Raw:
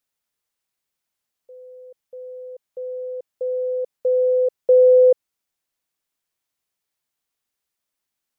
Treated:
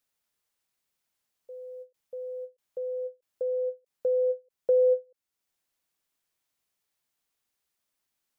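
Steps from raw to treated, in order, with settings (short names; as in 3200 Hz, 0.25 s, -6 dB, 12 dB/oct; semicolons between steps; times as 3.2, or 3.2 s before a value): compressor 1.5:1, threshold -36 dBFS, peak gain reduction 9 dB; ending taper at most 330 dB/s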